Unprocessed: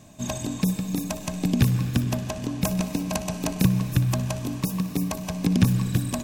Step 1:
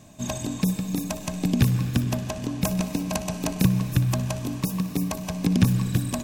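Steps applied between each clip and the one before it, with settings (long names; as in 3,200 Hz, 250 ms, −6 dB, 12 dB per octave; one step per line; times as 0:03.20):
no processing that can be heard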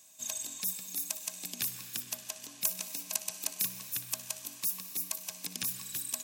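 first difference
level +1 dB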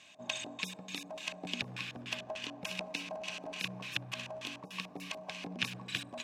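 brickwall limiter −23.5 dBFS, peak gain reduction 10.5 dB
auto-filter low-pass square 3.4 Hz 710–2,800 Hz
level +7.5 dB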